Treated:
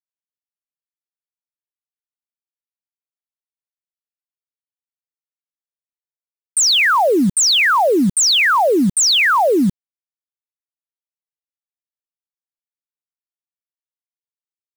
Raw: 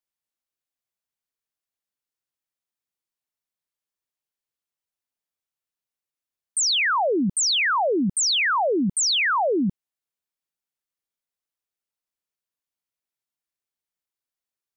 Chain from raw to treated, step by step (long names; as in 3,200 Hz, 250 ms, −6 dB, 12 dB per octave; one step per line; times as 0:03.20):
bit reduction 7 bits
level +7.5 dB